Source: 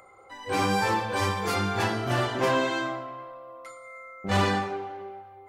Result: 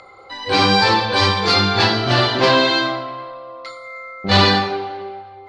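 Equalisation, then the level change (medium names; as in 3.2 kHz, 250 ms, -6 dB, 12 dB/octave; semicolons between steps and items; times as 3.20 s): resonant low-pass 4.3 kHz, resonance Q 5.4; +9.0 dB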